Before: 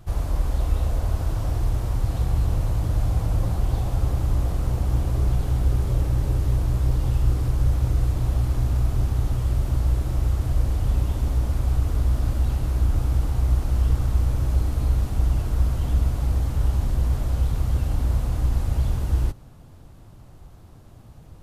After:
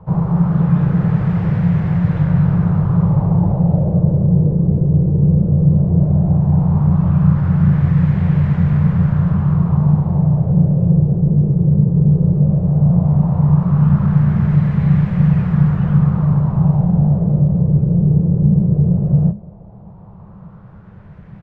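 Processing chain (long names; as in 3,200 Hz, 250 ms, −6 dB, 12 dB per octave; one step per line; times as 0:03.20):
frequency shifter −210 Hz
auto-filter low-pass sine 0.15 Hz 430–1,900 Hz
slap from a distant wall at 34 metres, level −27 dB
level +7 dB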